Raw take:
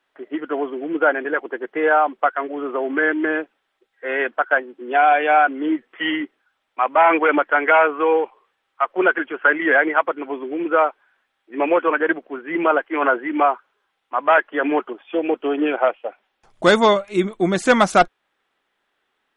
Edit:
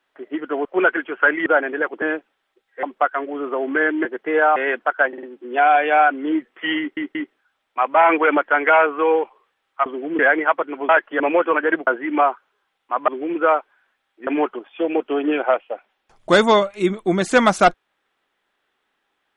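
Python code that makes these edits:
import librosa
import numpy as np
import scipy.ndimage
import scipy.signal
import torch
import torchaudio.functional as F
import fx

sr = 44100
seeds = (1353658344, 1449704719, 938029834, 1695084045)

y = fx.edit(x, sr, fx.swap(start_s=0.65, length_s=0.33, other_s=8.87, other_length_s=0.81),
    fx.swap(start_s=1.54, length_s=0.51, other_s=3.27, other_length_s=0.81),
    fx.stutter(start_s=4.6, slice_s=0.05, count=4),
    fx.stutter(start_s=6.16, slice_s=0.18, count=3),
    fx.swap(start_s=10.38, length_s=1.19, other_s=14.3, other_length_s=0.31),
    fx.cut(start_s=12.24, length_s=0.85), tone=tone)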